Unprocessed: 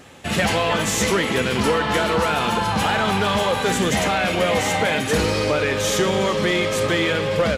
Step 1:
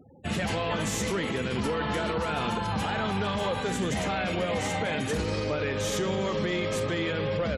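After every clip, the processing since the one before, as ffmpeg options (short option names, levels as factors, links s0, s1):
-af "afftfilt=real='re*gte(hypot(re,im),0.0158)':imag='im*gte(hypot(re,im),0.0158)':win_size=1024:overlap=0.75,lowshelf=f=370:g=6,alimiter=limit=0.266:level=0:latency=1:release=65,volume=0.376"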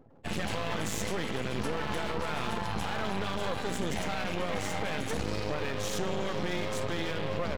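-af "aeval=exprs='max(val(0),0)':c=same"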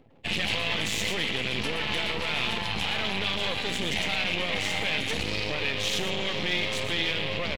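-filter_complex "[0:a]acrossover=split=4200[s0][s1];[s0]aexciter=amount=7.7:drive=2.7:freq=2100[s2];[s1]aecho=1:1:119:0.501[s3];[s2][s3]amix=inputs=2:normalize=0"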